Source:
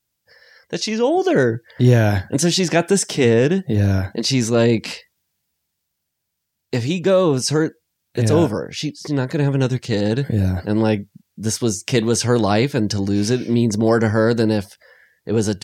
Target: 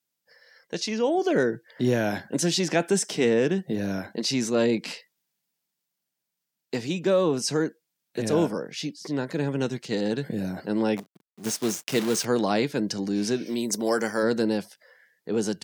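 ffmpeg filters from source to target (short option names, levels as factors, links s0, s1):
-filter_complex "[0:a]asplit=3[s0][s1][s2];[s0]afade=t=out:st=10.96:d=0.02[s3];[s1]acrusher=bits=5:dc=4:mix=0:aa=0.000001,afade=t=in:st=10.96:d=0.02,afade=t=out:st=12.24:d=0.02[s4];[s2]afade=t=in:st=12.24:d=0.02[s5];[s3][s4][s5]amix=inputs=3:normalize=0,highpass=f=160:w=0.5412,highpass=f=160:w=1.3066,asplit=3[s6][s7][s8];[s6]afade=t=out:st=13.45:d=0.02[s9];[s7]aemphasis=mode=production:type=bsi,afade=t=in:st=13.45:d=0.02,afade=t=out:st=14.22:d=0.02[s10];[s8]afade=t=in:st=14.22:d=0.02[s11];[s9][s10][s11]amix=inputs=3:normalize=0,volume=0.473"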